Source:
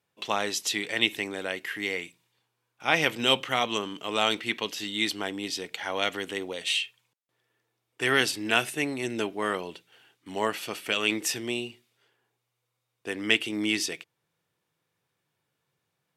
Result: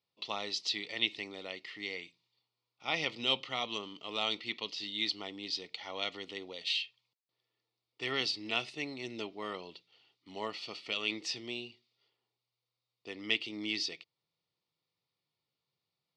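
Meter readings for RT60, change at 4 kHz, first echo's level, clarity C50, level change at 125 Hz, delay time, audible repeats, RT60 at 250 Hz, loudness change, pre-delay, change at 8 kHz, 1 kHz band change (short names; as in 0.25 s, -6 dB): none, -5.5 dB, none, none, -11.0 dB, none, none, none, -8.0 dB, none, -14.5 dB, -11.0 dB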